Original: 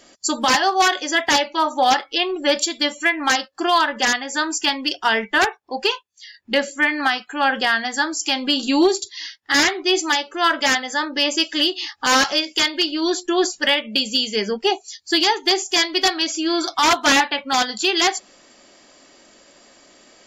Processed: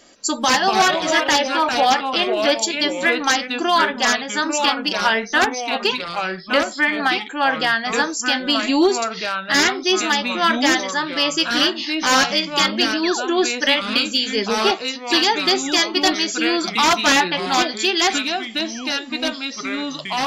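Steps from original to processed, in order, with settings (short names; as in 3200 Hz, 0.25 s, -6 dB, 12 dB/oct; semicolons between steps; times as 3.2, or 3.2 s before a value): painted sound fall, 13.03–13.29, 290–2800 Hz -28 dBFS; echoes that change speed 0.158 s, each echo -3 st, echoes 2, each echo -6 dB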